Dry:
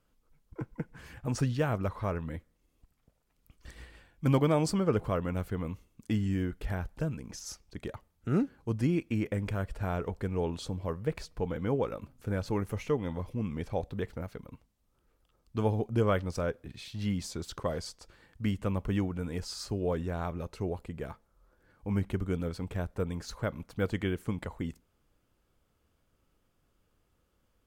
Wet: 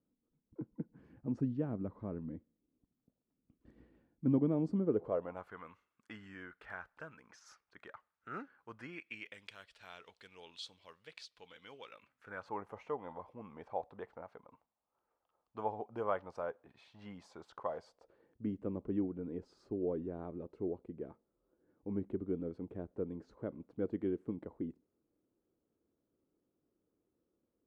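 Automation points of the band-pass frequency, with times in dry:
band-pass, Q 2.1
4.8 s 260 Hz
5.6 s 1400 Hz
8.8 s 1400 Hz
9.41 s 3600 Hz
11.79 s 3600 Hz
12.58 s 850 Hz
17.69 s 850 Hz
18.43 s 330 Hz

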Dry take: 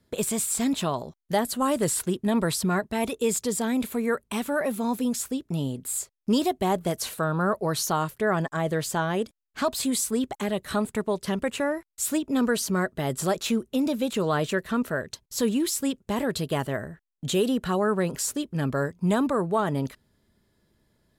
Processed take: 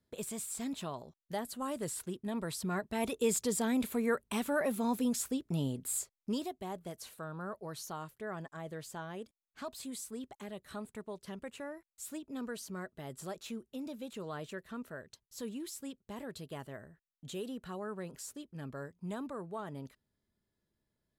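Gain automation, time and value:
2.46 s -13.5 dB
3.17 s -5.5 dB
5.96 s -5.5 dB
6.57 s -17 dB

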